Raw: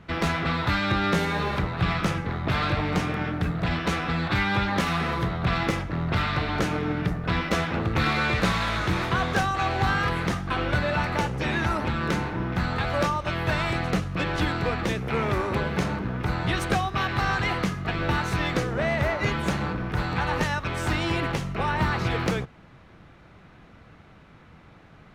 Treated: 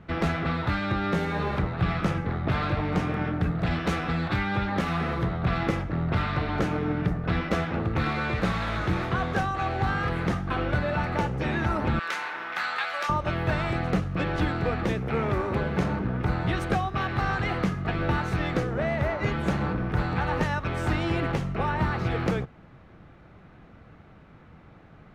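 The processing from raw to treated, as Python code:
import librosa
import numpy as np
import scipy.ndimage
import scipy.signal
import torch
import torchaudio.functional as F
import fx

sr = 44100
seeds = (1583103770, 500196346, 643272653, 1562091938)

y = fx.high_shelf(x, sr, hz=4200.0, db=6.0, at=(3.59, 4.36))
y = fx.highpass(y, sr, hz=1400.0, slope=12, at=(11.99, 13.09))
y = fx.high_shelf(y, sr, hz=2400.0, db=-10.0)
y = fx.notch(y, sr, hz=990.0, q=24.0)
y = fx.rider(y, sr, range_db=10, speed_s=0.5)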